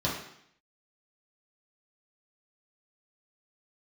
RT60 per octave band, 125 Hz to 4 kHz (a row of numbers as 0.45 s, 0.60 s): 0.65 s, 0.75 s, 0.65 s, 0.70 s, 0.75 s, 0.70 s